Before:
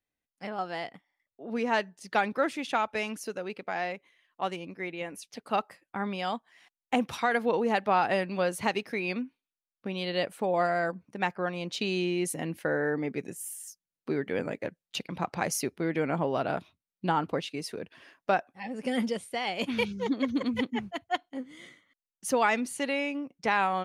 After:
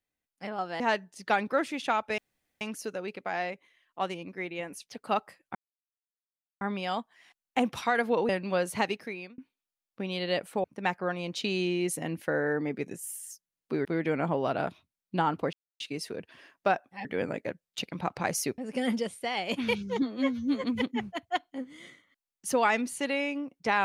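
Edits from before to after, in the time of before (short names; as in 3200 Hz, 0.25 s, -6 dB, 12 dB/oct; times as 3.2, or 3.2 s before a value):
0.8–1.65 cut
3.03 insert room tone 0.43 s
5.97 insert silence 1.06 s
7.65–8.15 cut
8.72–9.24 fade out
10.5–11.01 cut
14.22–15.75 move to 18.68
17.43 insert silence 0.27 s
20.12–20.43 stretch 2×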